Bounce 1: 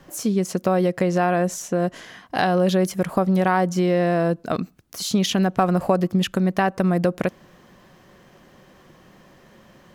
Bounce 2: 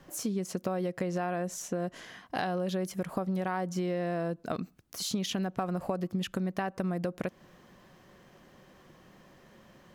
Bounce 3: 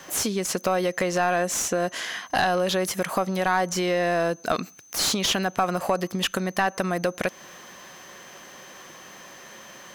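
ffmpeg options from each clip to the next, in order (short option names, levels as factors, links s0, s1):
-af "acompressor=threshold=0.0631:ratio=3,volume=0.501"
-filter_complex "[0:a]crystalizer=i=7:c=0,asplit=2[s0][s1];[s1]highpass=f=720:p=1,volume=8.91,asoftclip=type=tanh:threshold=0.501[s2];[s0][s2]amix=inputs=2:normalize=0,lowpass=f=1600:p=1,volume=0.501,aeval=exprs='val(0)+0.00316*sin(2*PI*6200*n/s)':c=same"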